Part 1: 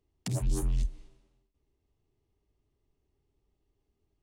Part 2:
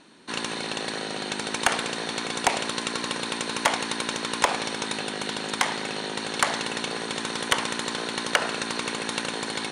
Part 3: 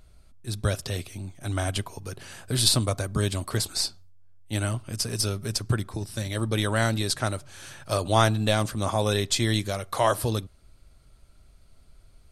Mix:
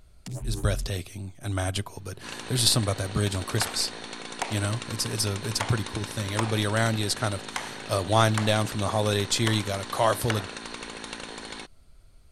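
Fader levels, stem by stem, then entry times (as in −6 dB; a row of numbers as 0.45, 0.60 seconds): −4.0, −8.5, −0.5 decibels; 0.00, 1.95, 0.00 seconds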